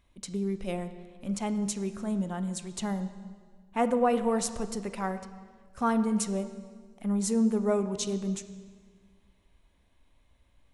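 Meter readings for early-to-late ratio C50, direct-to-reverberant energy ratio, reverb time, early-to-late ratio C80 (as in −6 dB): 11.5 dB, 10.0 dB, 1.7 s, 13.0 dB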